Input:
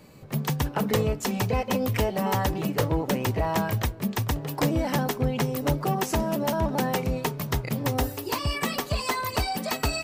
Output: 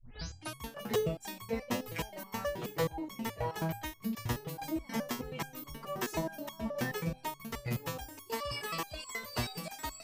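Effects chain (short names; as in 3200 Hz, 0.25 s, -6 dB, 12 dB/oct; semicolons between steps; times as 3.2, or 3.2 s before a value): tape start at the beginning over 0.62 s; stepped resonator 9.4 Hz 120–1100 Hz; gain +4.5 dB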